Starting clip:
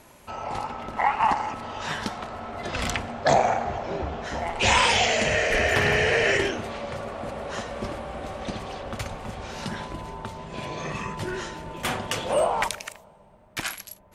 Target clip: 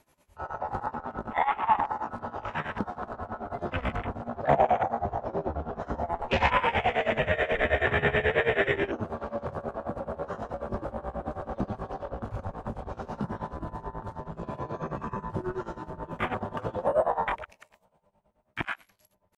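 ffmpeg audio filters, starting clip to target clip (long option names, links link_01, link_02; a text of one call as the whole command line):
ffmpeg -i in.wav -filter_complex "[0:a]acrossover=split=2600[link_01][link_02];[link_02]acompressor=threshold=-43dB:ratio=4:attack=1:release=60[link_03];[link_01][link_03]amix=inputs=2:normalize=0,atempo=0.73,asplit=2[link_04][link_05];[link_05]acompressor=threshold=-35dB:ratio=5,volume=-2dB[link_06];[link_04][link_06]amix=inputs=2:normalize=0,afwtdn=0.0355,tremolo=f=9.3:d=0.87" out.wav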